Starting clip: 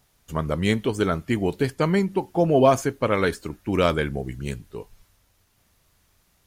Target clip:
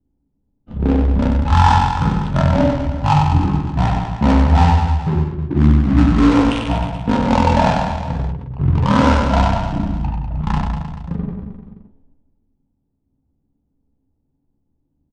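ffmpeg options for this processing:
ffmpeg -i in.wav -filter_complex "[0:a]bandreject=frequency=60:width_type=h:width=6,bandreject=frequency=120:width_type=h:width=6,bandreject=frequency=180:width_type=h:width=6,bandreject=frequency=240:width_type=h:width=6,bandreject=frequency=300:width_type=h:width=6,bandreject=frequency=360:width_type=h:width=6,bandreject=frequency=420:width_type=h:width=6,agate=range=-12dB:threshold=-58dB:ratio=16:detection=peak,equalizer=frequency=100:width_type=o:width=0.33:gain=-7,equalizer=frequency=630:width_type=o:width=0.33:gain=11,equalizer=frequency=2000:width_type=o:width=0.33:gain=9,equalizer=frequency=8000:width_type=o:width=0.33:gain=10,asplit=2[link_01][link_02];[link_02]acrusher=bits=2:mode=log:mix=0:aa=0.000001,volume=-7dB[link_03];[link_01][link_03]amix=inputs=2:normalize=0,equalizer=frequency=380:width_type=o:width=2.3:gain=8.5,acrossover=split=180|1500[link_04][link_05][link_06];[link_05]acompressor=threshold=-25dB:ratio=6[link_07];[link_04][link_07][link_06]amix=inputs=3:normalize=0,flanger=delay=16.5:depth=4.3:speed=0.45,adynamicsmooth=sensitivity=5.5:basefreq=590,aecho=1:1:6:0.35,aecho=1:1:40|84|132.4|185.6|244.2:0.631|0.398|0.251|0.158|0.1,asetrate=18846,aresample=44100,alimiter=level_in=8.5dB:limit=-1dB:release=50:level=0:latency=1,volume=-1dB" out.wav

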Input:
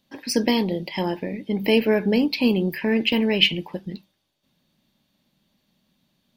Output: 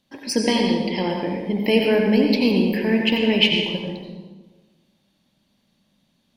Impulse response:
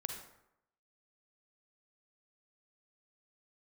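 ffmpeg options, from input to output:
-filter_complex "[0:a]asettb=1/sr,asplit=3[link_01][link_02][link_03];[link_01]atrim=end=0.434[link_04];[link_02]atrim=start=0.43:end=1.1,asetpts=PTS-STARTPTS,afade=type=in:duration=0.004:curve=qsin,afade=type=out:start_time=0.666:duration=0.004:curve=qsin,highshelf=frequency=6500:width_type=q:width=1.5:gain=-10.5[link_05];[link_03]atrim=start=1.096[link_06];[link_04][link_05]acrossfade=duration=0.004:curve1=hsin:curve2=qsin[link_07];[link_07][link_06]acrossfade=duration=0.004:curve1=qsin:curve2=hsin[link_08];[1:a]atrim=start_sample=2205,asetrate=23814,aresample=44100[link_09];[link_08][link_09]afir=irnorm=-1:irlink=0,volume=-1dB"

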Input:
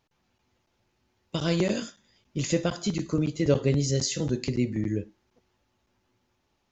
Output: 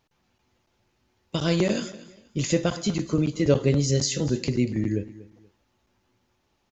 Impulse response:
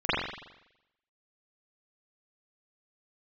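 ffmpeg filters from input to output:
-af "aecho=1:1:239|478:0.126|0.034,volume=2.5dB"

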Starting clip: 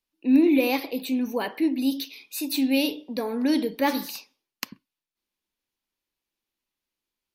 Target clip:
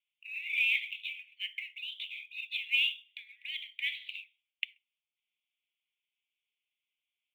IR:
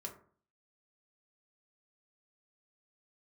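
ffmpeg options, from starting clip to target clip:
-af "asuperpass=centerf=2700:order=12:qfactor=1.9,acrusher=bits=8:mode=log:mix=0:aa=0.000001,volume=4dB"

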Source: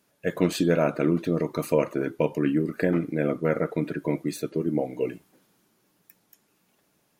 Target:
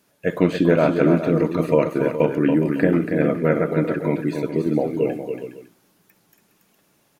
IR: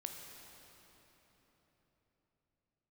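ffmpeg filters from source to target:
-filter_complex "[0:a]acrossover=split=3200[link_01][link_02];[link_02]acompressor=threshold=-54dB:ratio=4:attack=1:release=60[link_03];[link_01][link_03]amix=inputs=2:normalize=0,asplit=2[link_04][link_05];[link_05]aecho=0:1:65|281|413|555:0.112|0.473|0.266|0.106[link_06];[link_04][link_06]amix=inputs=2:normalize=0,volume=5dB"

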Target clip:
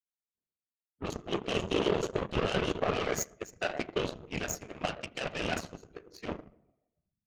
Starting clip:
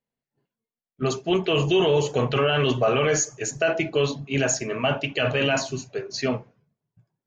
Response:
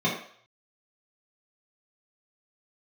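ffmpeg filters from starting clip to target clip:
-filter_complex "[0:a]asplit=2[link_01][link_02];[1:a]atrim=start_sample=2205,asetrate=24696,aresample=44100,adelay=82[link_03];[link_02][link_03]afir=irnorm=-1:irlink=0,volume=-25.5dB[link_04];[link_01][link_04]amix=inputs=2:normalize=0,afftfilt=real='hypot(re,im)*cos(2*PI*random(0))':imag='hypot(re,im)*sin(2*PI*random(1))':win_size=512:overlap=0.75,aeval=exprs='0.237*(cos(1*acos(clip(val(0)/0.237,-1,1)))-cos(1*PI/2))+0.0299*(cos(7*acos(clip(val(0)/0.237,-1,1)))-cos(7*PI/2))':channel_layout=same,volume=-2.5dB"

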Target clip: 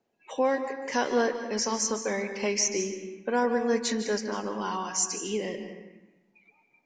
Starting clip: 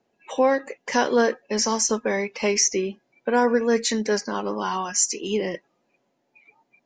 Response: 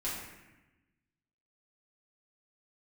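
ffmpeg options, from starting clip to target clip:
-filter_complex "[0:a]asplit=2[link_01][link_02];[1:a]atrim=start_sample=2205,adelay=147[link_03];[link_02][link_03]afir=irnorm=-1:irlink=0,volume=-11.5dB[link_04];[link_01][link_04]amix=inputs=2:normalize=0,volume=-6dB"

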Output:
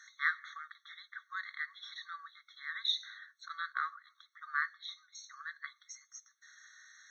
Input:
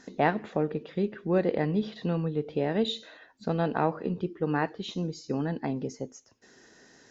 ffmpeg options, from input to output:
ffmpeg -i in.wav -filter_complex "[0:a]asettb=1/sr,asplit=3[link_01][link_02][link_03];[link_01]atrim=end=3.484[link_04];[link_02]atrim=start=3.48:end=4.07,asetpts=PTS-STARTPTS,afade=type=in:duration=0.004:curve=qsin,afade=type=out:start_time=0.586:duration=0.004:curve=qsin,agate=range=-8dB:threshold=-29dB:ratio=16:detection=peak[link_05];[link_03]atrim=start=4.066[link_06];[link_04][link_05]acrossfade=duration=0.004:curve1=hsin:curve2=qsin[link_07];[link_07][link_06]acrossfade=duration=0.004:curve1=qsin:curve2=hsin,asettb=1/sr,asplit=3[link_08][link_09][link_10];[link_08]atrim=end=4.744[link_11];[link_09]atrim=start=4.74:end=5.15,asetpts=PTS-STARTPTS,afade=type=in:duration=0.004:curve=qsin,afade=type=out:start_time=0.406:duration=0.004:curve=qsin,lowpass=3200[link_12];[link_10]atrim=start=5.146[link_13];[link_11][link_12]acrossfade=duration=0.004:curve1=hsin:curve2=qsin[link_14];[link_14][link_13]acrossfade=duration=0.004:curve1=qsin:curve2=hsin,afftfilt=real='re*eq(mod(floor(b*sr/1024/1100),2),1)':imag='im*eq(mod(floor(b*sr/1024/1100),2),1)':win_size=1024:overlap=0.75,volume=2dB" out.wav

